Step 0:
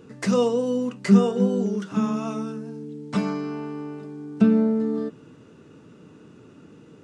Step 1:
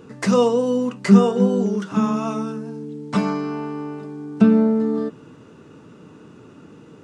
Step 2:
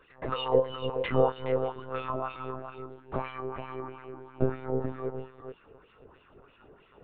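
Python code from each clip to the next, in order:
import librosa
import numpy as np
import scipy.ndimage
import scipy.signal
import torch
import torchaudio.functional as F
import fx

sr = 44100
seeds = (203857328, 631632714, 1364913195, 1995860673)

y1 = fx.peak_eq(x, sr, hz=980.0, db=4.0, octaves=0.97)
y1 = y1 * 10.0 ** (3.5 / 20.0)
y2 = fx.wah_lfo(y1, sr, hz=3.1, low_hz=510.0, high_hz=3000.0, q=2.5)
y2 = y2 + 10.0 ** (-8.5 / 20.0) * np.pad(y2, (int(424 * sr / 1000.0), 0))[:len(y2)]
y2 = fx.lpc_monotone(y2, sr, seeds[0], pitch_hz=130.0, order=16)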